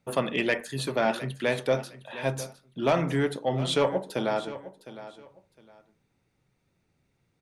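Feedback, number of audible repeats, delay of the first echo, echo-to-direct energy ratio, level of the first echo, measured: 23%, 2, 0.709 s, -15.0 dB, -15.0 dB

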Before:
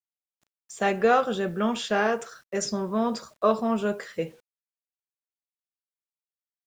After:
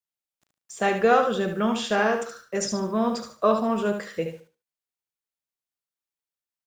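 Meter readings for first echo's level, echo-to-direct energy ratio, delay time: -7.5 dB, -7.0 dB, 73 ms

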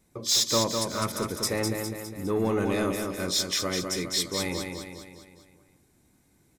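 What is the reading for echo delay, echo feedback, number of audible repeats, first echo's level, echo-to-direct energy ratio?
0.204 s, 51%, 6, -5.0 dB, -3.5 dB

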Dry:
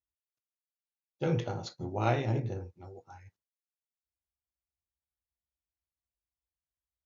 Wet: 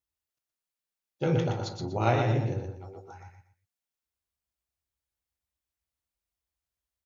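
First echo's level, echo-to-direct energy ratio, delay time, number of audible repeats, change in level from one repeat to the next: -5.0 dB, -4.5 dB, 0.121 s, 3, -11.5 dB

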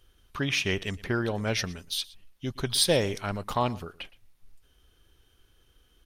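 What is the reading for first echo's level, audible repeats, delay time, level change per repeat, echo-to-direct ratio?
-21.0 dB, 1, 0.117 s, no steady repeat, -21.0 dB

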